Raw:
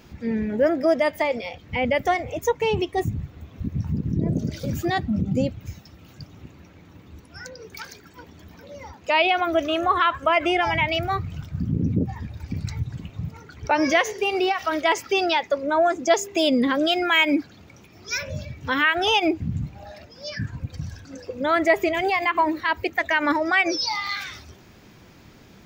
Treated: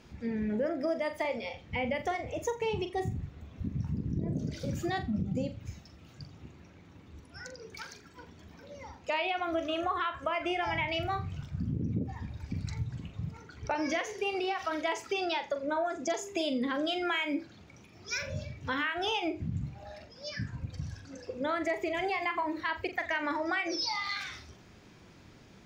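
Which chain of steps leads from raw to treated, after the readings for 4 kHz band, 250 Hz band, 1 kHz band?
-10.5 dB, -9.5 dB, -10.5 dB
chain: low-pass 11 kHz 12 dB/octave; compression, threshold -22 dBFS, peak gain reduction 9.5 dB; on a send: flutter echo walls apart 7.3 m, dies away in 0.27 s; on the sum: trim -6.5 dB

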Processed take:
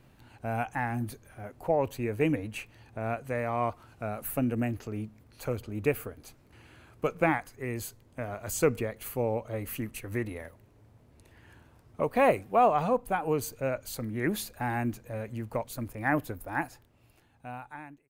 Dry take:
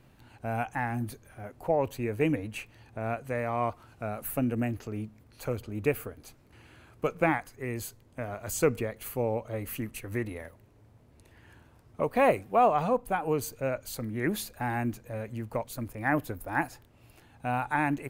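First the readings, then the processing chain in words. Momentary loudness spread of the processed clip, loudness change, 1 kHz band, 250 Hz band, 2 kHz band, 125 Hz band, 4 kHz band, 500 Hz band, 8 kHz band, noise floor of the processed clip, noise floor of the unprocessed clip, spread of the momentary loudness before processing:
15 LU, 0.0 dB, -0.5 dB, -0.5 dB, -1.0 dB, -0.5 dB, 0.0 dB, 0.0 dB, 0.0 dB, -61 dBFS, -59 dBFS, 13 LU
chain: fade out at the end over 2.00 s

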